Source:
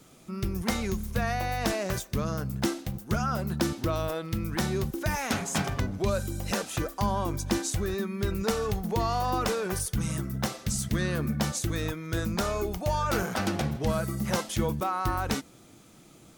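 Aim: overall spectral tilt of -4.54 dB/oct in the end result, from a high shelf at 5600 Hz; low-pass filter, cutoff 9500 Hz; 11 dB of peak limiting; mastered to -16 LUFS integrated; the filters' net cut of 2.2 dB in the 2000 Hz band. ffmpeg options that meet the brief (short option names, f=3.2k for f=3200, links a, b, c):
-af "lowpass=9.5k,equalizer=f=2k:t=o:g=-4,highshelf=f=5.6k:g=9,volume=16dB,alimiter=limit=-5.5dB:level=0:latency=1"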